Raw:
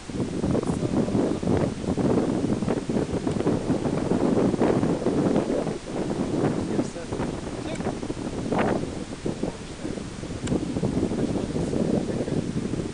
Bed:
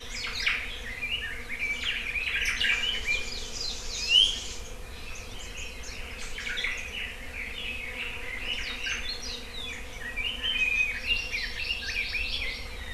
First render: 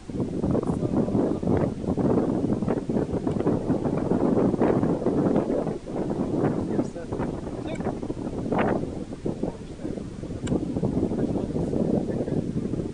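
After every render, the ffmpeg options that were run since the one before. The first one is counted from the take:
ffmpeg -i in.wav -af "afftdn=noise_reduction=10:noise_floor=-37" out.wav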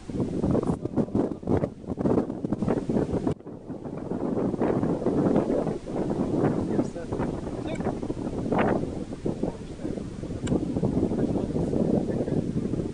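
ffmpeg -i in.wav -filter_complex "[0:a]asplit=3[link_01][link_02][link_03];[link_01]afade=type=out:start_time=0.74:duration=0.02[link_04];[link_02]agate=range=-10dB:threshold=-23dB:ratio=16:release=100:detection=peak,afade=type=in:start_time=0.74:duration=0.02,afade=type=out:start_time=2.58:duration=0.02[link_05];[link_03]afade=type=in:start_time=2.58:duration=0.02[link_06];[link_04][link_05][link_06]amix=inputs=3:normalize=0,asplit=2[link_07][link_08];[link_07]atrim=end=3.33,asetpts=PTS-STARTPTS,afade=type=out:start_time=3.326:duration=0.004:curve=hsin:silence=0.0707946[link_09];[link_08]atrim=start=3.33,asetpts=PTS-STARTPTS,afade=type=in:duration=2.04:silence=0.0707946[link_10];[link_09][link_10]concat=n=2:v=0:a=1" out.wav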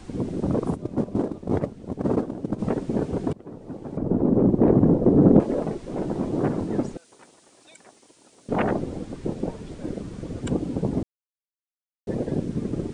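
ffmpeg -i in.wav -filter_complex "[0:a]asettb=1/sr,asplit=3[link_01][link_02][link_03];[link_01]atrim=end=3.974[link_04];[link_02]atrim=start=3.97:end=5.4,asetpts=PTS-STARTPTS,afade=type=in:duration=0.004:curve=qsin,afade=type=out:start_time=1.426:duration=0.004:curve=qsin,tiltshelf=frequency=970:gain=10[link_05];[link_03]atrim=start=5.396[link_06];[link_04][link_05]acrossfade=duration=0.004:curve1=hsin:curve2=qsin[link_07];[link_07][link_06]acrossfade=duration=0.004:curve1=qsin:curve2=hsin,asettb=1/sr,asplit=3[link_08][link_09][link_10];[link_08]atrim=end=6.974[link_11];[link_09]atrim=start=6.97:end=8.49,asetpts=PTS-STARTPTS,afade=type=in:duration=0.004:curve=qsin,afade=type=out:start_time=1.516:duration=0.004:curve=qsin,aderivative[link_12];[link_10]atrim=start=8.486[link_13];[link_11][link_12]acrossfade=duration=0.004:curve1=hsin:curve2=qsin[link_14];[link_14][link_13]acrossfade=duration=0.004:curve1=qsin:curve2=hsin,asplit=3[link_15][link_16][link_17];[link_15]atrim=end=11.03,asetpts=PTS-STARTPTS,afade=type=out:start_time=11.026:duration=0.004:curve=hsin[link_18];[link_16]atrim=start=11.03:end=12.07,asetpts=PTS-STARTPTS,volume=0[link_19];[link_17]atrim=start=12.07,asetpts=PTS-STARTPTS,afade=type=in:duration=0.004:curve=hsin[link_20];[link_18][link_19][link_20]concat=n=3:v=0:a=1" out.wav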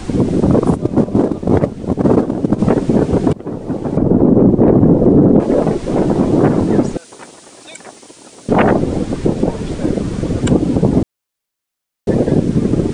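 ffmpeg -i in.wav -filter_complex "[0:a]asplit=2[link_01][link_02];[link_02]acompressor=threshold=-28dB:ratio=6,volume=2dB[link_03];[link_01][link_03]amix=inputs=2:normalize=0,alimiter=level_in=9dB:limit=-1dB:release=50:level=0:latency=1" out.wav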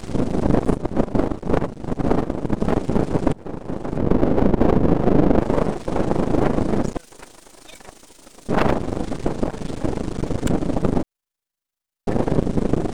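ffmpeg -i in.wav -af "aeval=exprs='max(val(0),0)':channel_layout=same,tremolo=f=26:d=0.667" out.wav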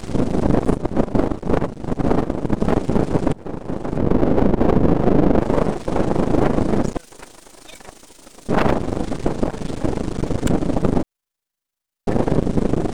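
ffmpeg -i in.wav -af "volume=2dB,alimiter=limit=-2dB:level=0:latency=1" out.wav

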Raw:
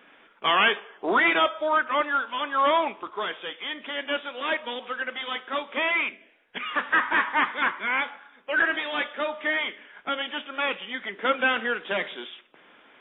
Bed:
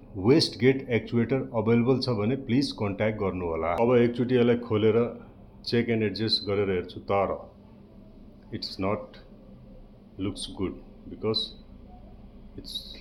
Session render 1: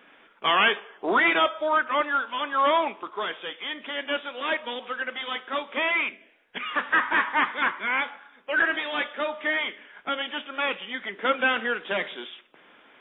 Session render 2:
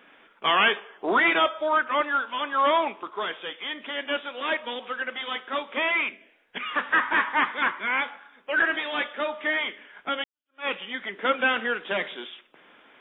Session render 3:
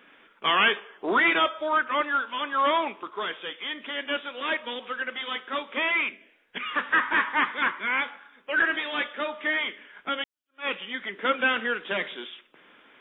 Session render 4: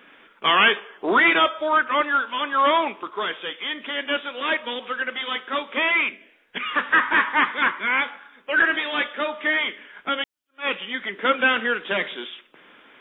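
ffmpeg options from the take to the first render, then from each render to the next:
ffmpeg -i in.wav -filter_complex "[0:a]asettb=1/sr,asplit=3[link_01][link_02][link_03];[link_01]atrim=end=2.534[link_04];[link_02]atrim=start=2.53:end=3.3,asetpts=PTS-STARTPTS,afade=type=in:duration=0.004:curve=qsin,afade=type=out:start_time=0.766:duration=0.004:curve=qsin,highpass=130[link_05];[link_03]atrim=start=3.296[link_06];[link_04][link_05]acrossfade=duration=0.004:curve1=hsin:curve2=qsin[link_07];[link_07][link_06]acrossfade=duration=0.004:curve1=qsin:curve2=hsin" out.wav
ffmpeg -i in.wav -filter_complex "[0:a]asplit=2[link_01][link_02];[link_01]atrim=end=10.24,asetpts=PTS-STARTPTS,afade=type=out:start_time=10.236:duration=0.004:curve=hsin[link_03];[link_02]atrim=start=10.24,asetpts=PTS-STARTPTS,afade=type=in:duration=0.43:curve=exp[link_04];[link_03][link_04]concat=n=2:v=0:a=1" out.wav
ffmpeg -i in.wav -af "equalizer=frequency=730:width_type=o:width=0.73:gain=-4.5" out.wav
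ffmpeg -i in.wav -af "volume=4.5dB" out.wav

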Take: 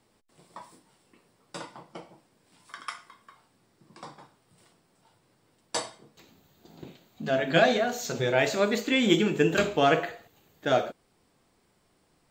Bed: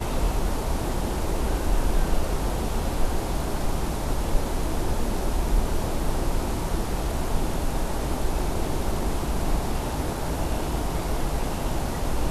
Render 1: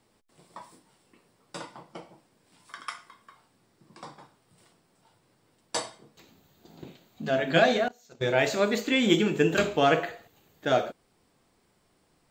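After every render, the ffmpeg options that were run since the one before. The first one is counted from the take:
ffmpeg -i in.wav -filter_complex "[0:a]asettb=1/sr,asplit=3[link_01][link_02][link_03];[link_01]atrim=end=7.884[link_04];[link_02]atrim=start=7.88:end=8.29,asetpts=PTS-STARTPTS,afade=type=in:duration=0.004:curve=qsin,afade=type=out:start_time=0.406:duration=0.004:curve=qsin,agate=range=-24dB:threshold=-29dB:ratio=16:release=100:detection=peak[link_05];[link_03]atrim=start=8.286[link_06];[link_04][link_05]acrossfade=duration=0.004:curve1=hsin:curve2=qsin[link_07];[link_07][link_06]acrossfade=duration=0.004:curve1=qsin:curve2=hsin" out.wav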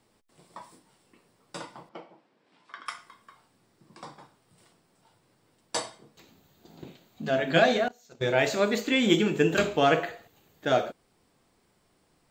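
ffmpeg -i in.wav -filter_complex "[0:a]asettb=1/sr,asplit=3[link_01][link_02][link_03];[link_01]atrim=end=1.894[link_04];[link_02]atrim=start=1.89:end=2.86,asetpts=PTS-STARTPTS,afade=type=in:duration=0.004:curve=qsin,afade=type=out:start_time=0.966:duration=0.004:curve=qsin,highpass=230,lowpass=3400[link_05];[link_03]atrim=start=2.856[link_06];[link_04][link_05]acrossfade=duration=0.004:curve1=hsin:curve2=qsin[link_07];[link_07][link_06]acrossfade=duration=0.004:curve1=qsin:curve2=hsin" out.wav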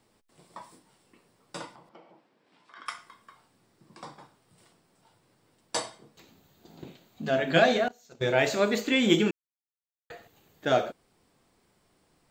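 ffmpeg -i in.wav -filter_complex "[0:a]asplit=3[link_01][link_02][link_03];[link_01]afade=type=out:start_time=1.73:duration=0.02[link_04];[link_02]acompressor=threshold=-52dB:ratio=2.5:attack=3.2:release=140:knee=1:detection=peak,afade=type=in:start_time=1.73:duration=0.02,afade=type=out:start_time=2.75:duration=0.02[link_05];[link_03]afade=type=in:start_time=2.75:duration=0.02[link_06];[link_04][link_05][link_06]amix=inputs=3:normalize=0,asplit=3[link_07][link_08][link_09];[link_07]atrim=end=9.31,asetpts=PTS-STARTPTS,afade=type=out:start_time=9.306:duration=0.004:curve=hsin[link_10];[link_08]atrim=start=9.31:end=10.1,asetpts=PTS-STARTPTS,volume=0[link_11];[link_09]atrim=start=10.1,asetpts=PTS-STARTPTS,afade=type=in:duration=0.004:curve=hsin[link_12];[link_10][link_11][link_12]concat=n=3:v=0:a=1" out.wav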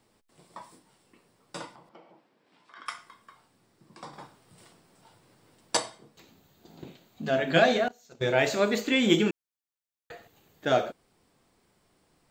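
ffmpeg -i in.wav -filter_complex "[0:a]asettb=1/sr,asplit=3[link_01][link_02][link_03];[link_01]atrim=end=4.134[link_04];[link_02]atrim=start=4.13:end=5.77,asetpts=PTS-STARTPTS,afade=type=in:duration=0.004:curve=qsin,afade=type=out:start_time=1.636:duration=0.004:curve=qsin,acontrast=36[link_05];[link_03]atrim=start=5.766[link_06];[link_04][link_05]acrossfade=duration=0.004:curve1=hsin:curve2=qsin[link_07];[link_07][link_06]acrossfade=duration=0.004:curve1=qsin:curve2=hsin" out.wav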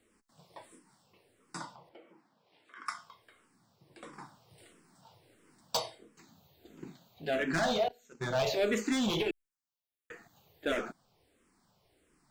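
ffmpeg -i in.wav -filter_complex "[0:a]volume=23dB,asoftclip=hard,volume=-23dB,asplit=2[link_01][link_02];[link_02]afreqshift=-1.5[link_03];[link_01][link_03]amix=inputs=2:normalize=1" out.wav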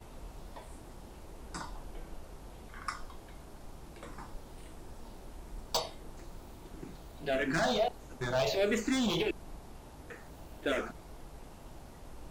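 ffmpeg -i in.wav -i bed.wav -filter_complex "[1:a]volume=-23dB[link_01];[0:a][link_01]amix=inputs=2:normalize=0" out.wav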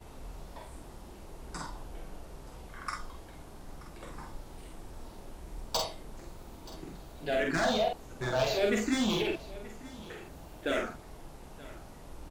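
ffmpeg -i in.wav -filter_complex "[0:a]asplit=2[link_01][link_02];[link_02]adelay=47,volume=-3.5dB[link_03];[link_01][link_03]amix=inputs=2:normalize=0,aecho=1:1:929:0.112" out.wav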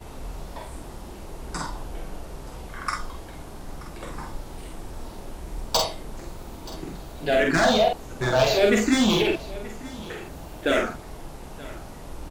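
ffmpeg -i in.wav -af "volume=9dB" out.wav

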